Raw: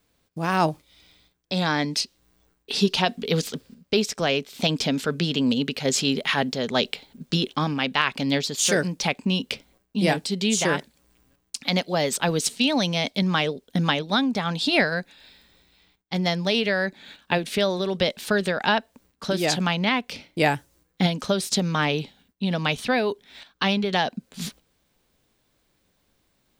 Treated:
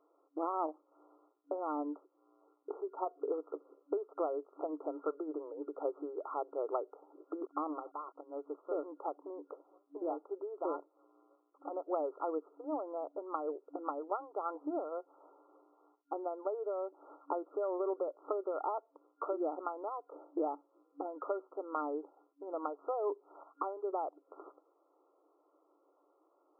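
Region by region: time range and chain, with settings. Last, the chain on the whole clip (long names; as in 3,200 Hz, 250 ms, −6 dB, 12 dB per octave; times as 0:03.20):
0:07.42–0:08.21: flat-topped bell 4,700 Hz +12.5 dB 2.9 octaves + leveller curve on the samples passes 3
whole clip: downward compressor 12 to 1, threshold −33 dBFS; brick-wall band-pass 280–1,400 Hz; level +3.5 dB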